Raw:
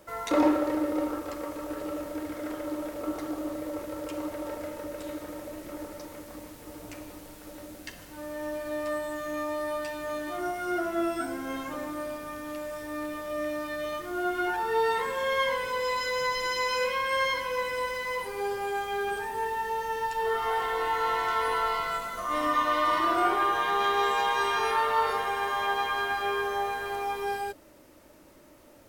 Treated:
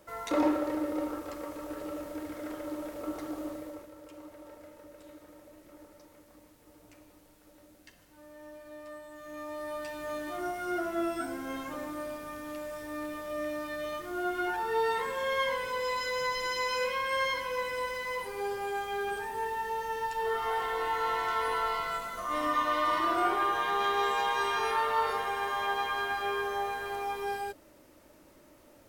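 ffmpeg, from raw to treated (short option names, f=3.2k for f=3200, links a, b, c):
-af "volume=7dB,afade=t=out:st=3.46:d=0.45:silence=0.316228,afade=t=in:st=9.11:d=0.99:silence=0.281838"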